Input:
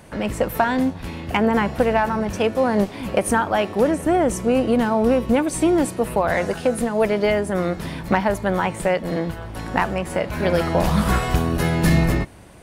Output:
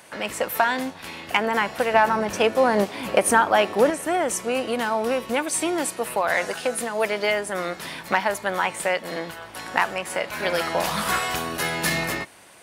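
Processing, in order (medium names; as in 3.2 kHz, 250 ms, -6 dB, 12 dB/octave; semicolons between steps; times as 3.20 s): high-pass 1.3 kHz 6 dB/octave, from 1.94 s 560 Hz, from 3.90 s 1.4 kHz; trim +4 dB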